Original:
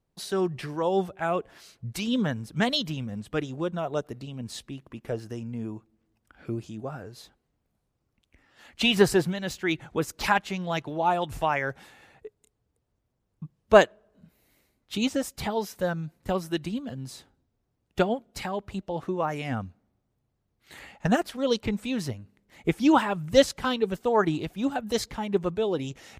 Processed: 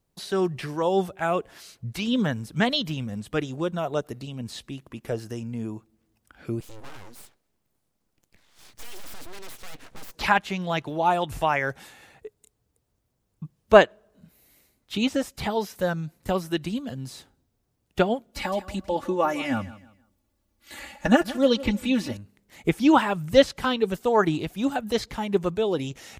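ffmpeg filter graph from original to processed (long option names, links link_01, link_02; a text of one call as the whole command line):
ffmpeg -i in.wav -filter_complex "[0:a]asettb=1/sr,asplit=3[link_01][link_02][link_03];[link_01]atrim=end=6.604[link_04];[link_02]atrim=start=6.6:end=10.15,asetpts=PTS-STARTPTS,afade=type=in:duration=0.004:curve=qsin,afade=type=out:start_time=3.546:duration=0.004:curve=qsin,aeval=exprs='abs(val(0))':channel_layout=same,aeval=exprs='(tanh(39.8*val(0)+0.25)-tanh(0.25))/39.8':channel_layout=same[link_05];[link_03]atrim=start=10.146[link_06];[link_04][link_05]acrossfade=duration=0.004:curve1=hsin:curve2=qsin[link_07];[link_07][link_06]acrossfade=duration=0.004:curve1=qsin:curve2=hsin,asettb=1/sr,asplit=3[link_08][link_09][link_10];[link_08]atrim=end=18.324[link_11];[link_09]atrim=start=18.32:end=22.17,asetpts=PTS-STARTPTS,afade=type=in:duration=0.004:curve=qsin,afade=type=out:start_time=3.846:duration=0.004:curve=qsin,aecho=1:1:3.5:0.85,atrim=end_sample=169785,aecho=1:1:160|320|480:0.141|0.041|0.0119,atrim=end_sample=169785[link_12];[link_10]atrim=start=22.166[link_13];[link_11][link_12]acrossfade=duration=0.004:curve1=hsin:curve2=qsin[link_14];[link_14][link_13]acrossfade=duration=0.004:curve1=qsin:curve2=hsin,acrossover=split=3900[link_15][link_16];[link_16]acompressor=threshold=-51dB:ratio=4:attack=1:release=60[link_17];[link_15][link_17]amix=inputs=2:normalize=0,highshelf=frequency=4700:gain=8.5,volume=2dB" out.wav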